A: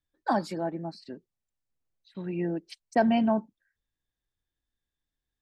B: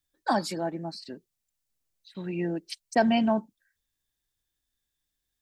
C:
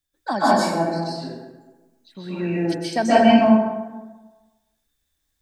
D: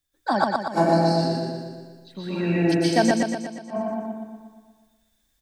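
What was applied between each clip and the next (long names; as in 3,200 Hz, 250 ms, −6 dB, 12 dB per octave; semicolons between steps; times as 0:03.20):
high-shelf EQ 3,000 Hz +11.5 dB
dense smooth reverb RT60 1.2 s, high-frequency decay 0.55×, pre-delay 115 ms, DRR −9 dB
gate with flip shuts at −10 dBFS, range −40 dB; on a send: repeating echo 119 ms, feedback 57%, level −3 dB; on the sum: level +2 dB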